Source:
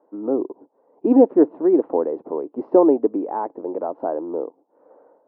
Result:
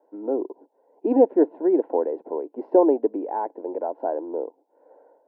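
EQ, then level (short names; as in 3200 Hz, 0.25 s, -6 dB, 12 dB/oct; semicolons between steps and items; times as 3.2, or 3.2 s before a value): HPF 340 Hz 12 dB/oct; Butterworth band-stop 1200 Hz, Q 3.5; -1.0 dB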